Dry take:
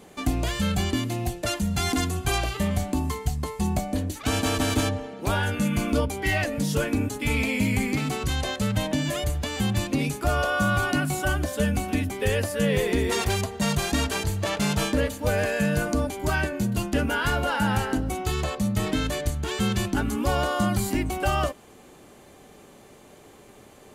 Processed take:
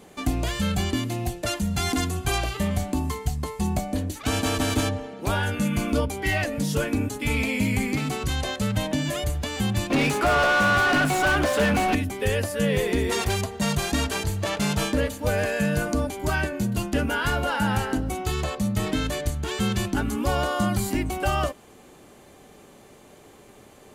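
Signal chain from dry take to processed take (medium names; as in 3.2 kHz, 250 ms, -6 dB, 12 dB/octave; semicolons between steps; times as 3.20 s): 9.90–11.95 s: overdrive pedal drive 26 dB, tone 2.1 kHz, clips at -13 dBFS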